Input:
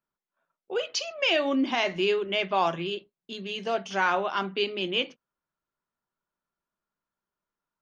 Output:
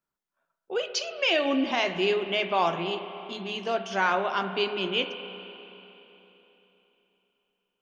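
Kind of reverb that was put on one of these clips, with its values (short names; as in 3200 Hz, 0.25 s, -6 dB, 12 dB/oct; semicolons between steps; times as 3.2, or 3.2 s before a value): spring tank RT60 3.5 s, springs 32/58 ms, chirp 60 ms, DRR 8.5 dB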